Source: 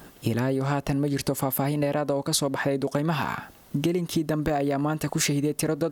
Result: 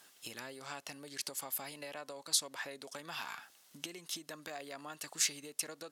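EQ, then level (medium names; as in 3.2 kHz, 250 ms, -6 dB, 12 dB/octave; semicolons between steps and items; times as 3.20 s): band-pass filter 7.9 kHz, Q 0.59; treble shelf 7.1 kHz -5.5 dB; -1.5 dB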